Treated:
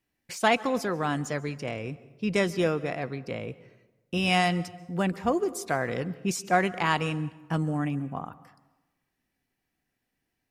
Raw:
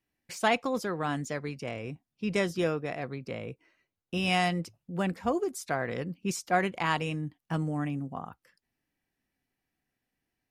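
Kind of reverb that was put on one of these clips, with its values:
dense smooth reverb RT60 1.1 s, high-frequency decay 0.65×, pre-delay 120 ms, DRR 18 dB
level +3 dB

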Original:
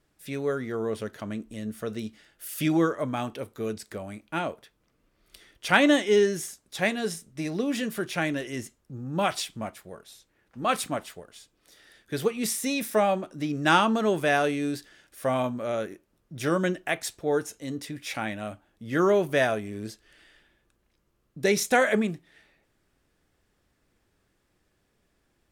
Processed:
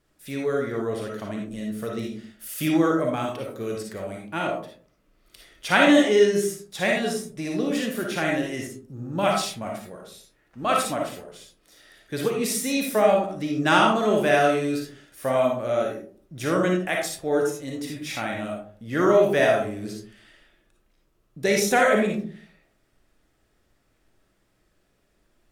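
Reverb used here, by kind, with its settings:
comb and all-pass reverb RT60 0.47 s, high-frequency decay 0.35×, pre-delay 15 ms, DRR −0.5 dB

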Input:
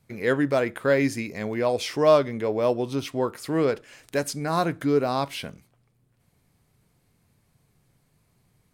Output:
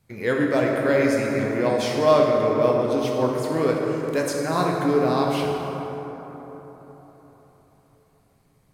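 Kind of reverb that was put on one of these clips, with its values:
dense smooth reverb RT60 4.2 s, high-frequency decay 0.4×, DRR −1.5 dB
level −1 dB

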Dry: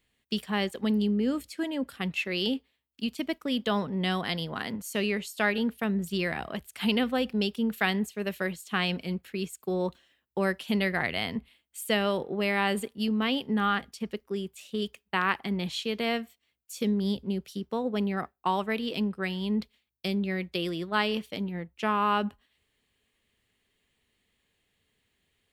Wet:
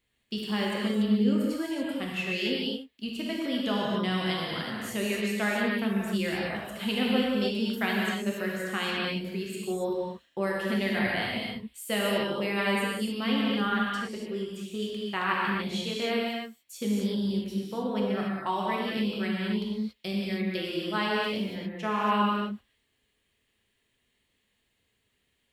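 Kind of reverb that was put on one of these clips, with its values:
reverb whose tail is shaped and stops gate 310 ms flat, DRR −4 dB
level −5 dB

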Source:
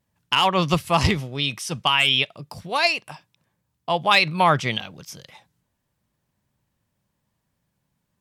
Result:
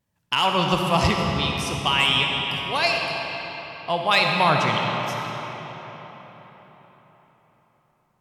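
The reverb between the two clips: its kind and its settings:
comb and all-pass reverb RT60 4.5 s, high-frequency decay 0.7×, pre-delay 15 ms, DRR 0.5 dB
level −2.5 dB

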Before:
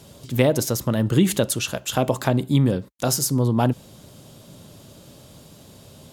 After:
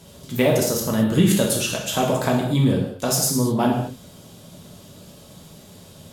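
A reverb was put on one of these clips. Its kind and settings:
reverb whose tail is shaped and stops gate 260 ms falling, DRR −2 dB
level −2 dB

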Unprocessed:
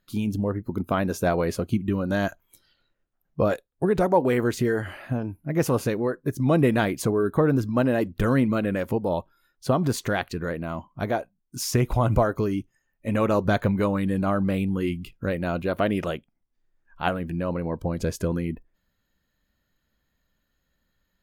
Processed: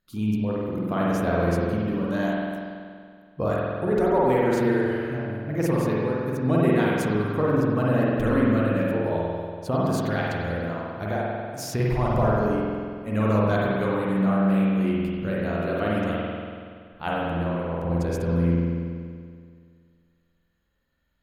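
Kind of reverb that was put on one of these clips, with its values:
spring reverb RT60 2.1 s, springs 47 ms, chirp 50 ms, DRR −5.5 dB
level −6 dB

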